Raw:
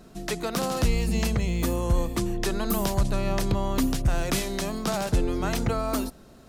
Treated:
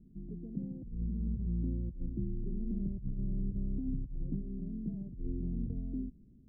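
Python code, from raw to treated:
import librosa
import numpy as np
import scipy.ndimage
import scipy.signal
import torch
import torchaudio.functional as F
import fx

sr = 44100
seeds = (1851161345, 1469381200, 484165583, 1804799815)

y = scipy.signal.sosfilt(scipy.signal.cheby2(4, 70, 1200.0, 'lowpass', fs=sr, output='sos'), x)
y = fx.over_compress(y, sr, threshold_db=-26.0, ratio=-0.5)
y = y * 10.0 ** (-7.5 / 20.0)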